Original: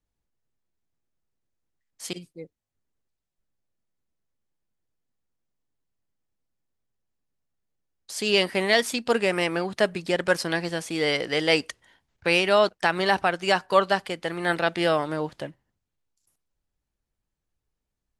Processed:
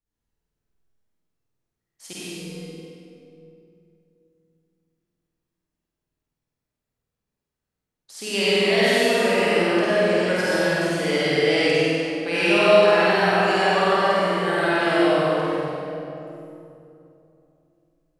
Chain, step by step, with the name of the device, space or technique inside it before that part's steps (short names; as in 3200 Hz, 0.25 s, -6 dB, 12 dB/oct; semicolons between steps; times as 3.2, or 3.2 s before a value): tunnel (flutter echo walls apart 8.5 m, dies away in 1.2 s; reverb RT60 2.9 s, pre-delay 56 ms, DRR -8 dB); gain -8 dB